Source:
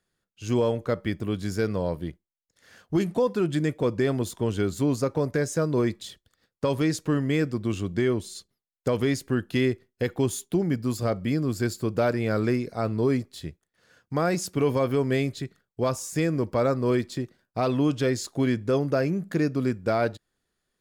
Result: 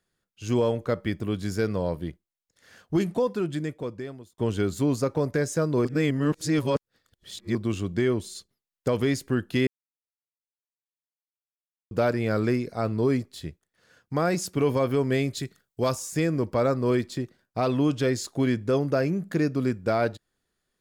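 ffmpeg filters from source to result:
ffmpeg -i in.wav -filter_complex "[0:a]asettb=1/sr,asplit=3[link_01][link_02][link_03];[link_01]atrim=end=15.334[link_04];[link_02]atrim=start=15.33:end=15.95,asetpts=PTS-STARTPTS,afade=type=in:duration=0.004:curve=qsin,afade=type=out:start_time=0.616:duration=0.004:curve=qsin,highshelf=frequency=4000:gain=9.5[link_05];[link_03]atrim=start=15.946[link_06];[link_04][link_05]acrossfade=duration=0.004:curve1=hsin:curve2=qsin[link_07];[link_07][link_06]acrossfade=duration=0.004:curve1=qsin:curve2=hsin,asplit=6[link_08][link_09][link_10][link_11][link_12][link_13];[link_08]atrim=end=4.38,asetpts=PTS-STARTPTS,afade=type=out:start_time=3.03:duration=1.35[link_14];[link_09]atrim=start=4.38:end=5.852,asetpts=PTS-STARTPTS,afade=type=in:duration=0.004:curve=hsin[link_15];[link_10]atrim=start=5.848:end=7.552,asetpts=PTS-STARTPTS,areverse[link_16];[link_11]atrim=start=7.548:end=9.67,asetpts=PTS-STARTPTS,afade=type=out:start_time=2.118:duration=0.004:curve=hsin[link_17];[link_12]atrim=start=9.67:end=11.91,asetpts=PTS-STARTPTS,volume=0[link_18];[link_13]atrim=start=11.91,asetpts=PTS-STARTPTS,afade=type=in:duration=0.004:curve=hsin[link_19];[link_14][link_15]concat=n=2:v=0:a=1[link_20];[link_20][link_16]acrossfade=duration=0.004:curve1=hsin:curve2=hsin[link_21];[link_17][link_18][link_19]concat=n=3:v=0:a=1[link_22];[link_21][link_22]acrossfade=duration=0.004:curve1=hsin:curve2=hsin" out.wav

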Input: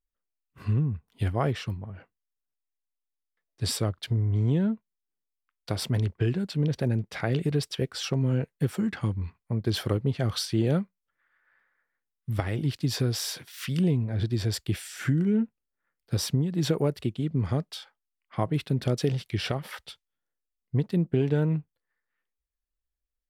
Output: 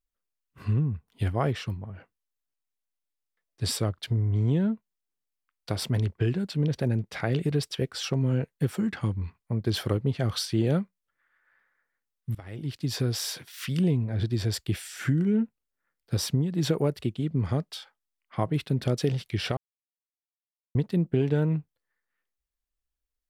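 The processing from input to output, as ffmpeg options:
ffmpeg -i in.wav -filter_complex "[0:a]asplit=4[link_01][link_02][link_03][link_04];[link_01]atrim=end=12.35,asetpts=PTS-STARTPTS,afade=type=out:start_time=12.346:duration=0.004:curve=hsin:silence=0.0749894[link_05];[link_02]atrim=start=12.35:end=19.57,asetpts=PTS-STARTPTS,afade=type=in:duration=0.97:curve=qsin:silence=0.0749894,afade=type=out:start_time=7.216:duration=0.004:curve=hsin[link_06];[link_03]atrim=start=19.57:end=20.75,asetpts=PTS-STARTPTS,volume=0[link_07];[link_04]atrim=start=20.75,asetpts=PTS-STARTPTS,afade=type=in:duration=0.004:curve=hsin[link_08];[link_05][link_06][link_07][link_08]concat=n=4:v=0:a=1" out.wav

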